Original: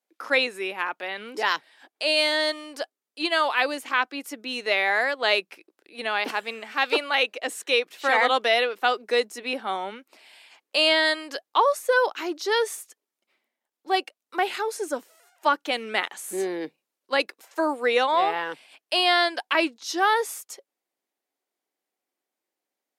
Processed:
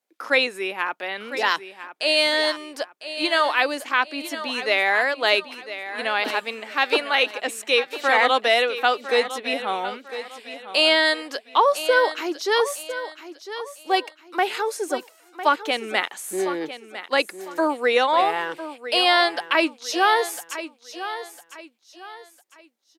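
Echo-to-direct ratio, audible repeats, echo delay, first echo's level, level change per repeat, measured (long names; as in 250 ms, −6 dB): −12.0 dB, 3, 1,003 ms, −12.5 dB, −9.5 dB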